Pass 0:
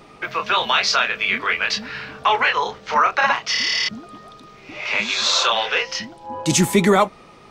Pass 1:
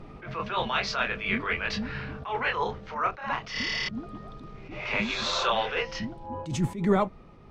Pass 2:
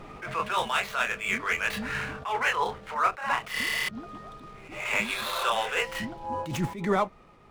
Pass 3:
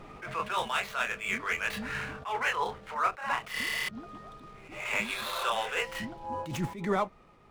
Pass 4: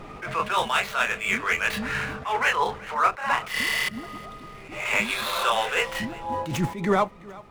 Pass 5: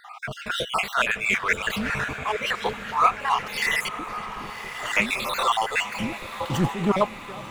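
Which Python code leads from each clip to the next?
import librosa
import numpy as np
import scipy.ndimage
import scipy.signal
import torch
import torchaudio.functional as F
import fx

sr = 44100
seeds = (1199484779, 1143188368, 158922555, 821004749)

y1 = fx.riaa(x, sr, side='playback')
y1 = fx.rider(y1, sr, range_db=3, speed_s=0.5)
y1 = fx.attack_slew(y1, sr, db_per_s=110.0)
y1 = y1 * 10.0 ** (-7.5 / 20.0)
y2 = scipy.ndimage.median_filter(y1, 9, mode='constant')
y2 = fx.low_shelf(y2, sr, hz=480.0, db=-12.0)
y2 = fx.rider(y2, sr, range_db=4, speed_s=0.5)
y2 = y2 * 10.0 ** (5.0 / 20.0)
y3 = fx.attack_slew(y2, sr, db_per_s=350.0)
y3 = y3 * 10.0 ** (-3.5 / 20.0)
y4 = fx.echo_feedback(y3, sr, ms=372, feedback_pct=42, wet_db=-21.0)
y4 = y4 * 10.0 ** (7.0 / 20.0)
y5 = fx.spec_dropout(y4, sr, seeds[0], share_pct=46)
y5 = fx.echo_diffused(y5, sr, ms=1051, feedback_pct=56, wet_db=-12.0)
y5 = fx.doppler_dist(y5, sr, depth_ms=0.21)
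y5 = y5 * 10.0 ** (3.0 / 20.0)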